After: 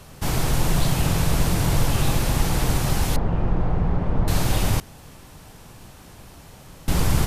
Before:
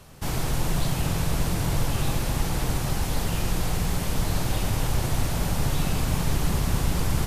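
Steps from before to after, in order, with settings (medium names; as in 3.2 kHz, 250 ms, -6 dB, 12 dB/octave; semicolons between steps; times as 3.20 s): 3.16–4.28 s: low-pass 1.1 kHz 12 dB/octave; 4.80–6.88 s: room tone; trim +4.5 dB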